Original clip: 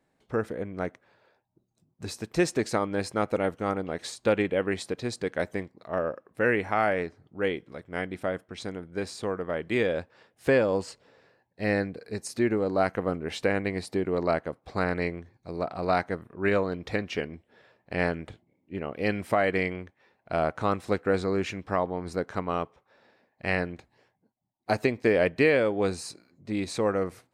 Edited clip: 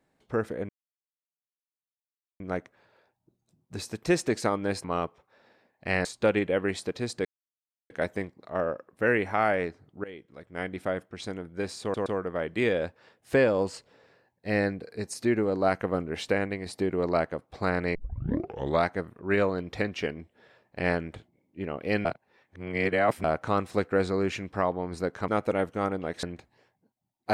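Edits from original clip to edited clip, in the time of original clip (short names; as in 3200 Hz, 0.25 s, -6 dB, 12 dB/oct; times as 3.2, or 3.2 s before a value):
0.69 insert silence 1.71 s
3.13–4.08 swap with 22.42–23.63
5.28 insert silence 0.65 s
7.42–8.14 fade in, from -20 dB
9.2 stutter 0.12 s, 3 plays
13.32–13.8 fade out equal-power, to -6.5 dB
15.09 tape start 0.91 s
19.19–20.38 reverse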